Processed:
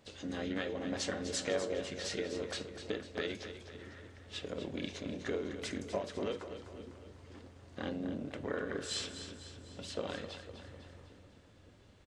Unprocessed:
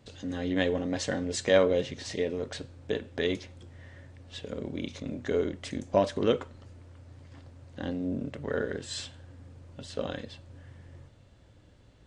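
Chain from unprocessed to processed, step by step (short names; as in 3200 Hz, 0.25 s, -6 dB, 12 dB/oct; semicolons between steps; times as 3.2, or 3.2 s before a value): low shelf 270 Hz -8.5 dB; compressor 12:1, threshold -32 dBFS, peak gain reduction 14.5 dB; flange 0.26 Hz, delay 9.5 ms, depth 1.4 ms, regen +81%; harmoniser -5 st -8 dB, +4 st -16 dB; split-band echo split 350 Hz, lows 0.564 s, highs 0.25 s, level -10 dB; gain +3.5 dB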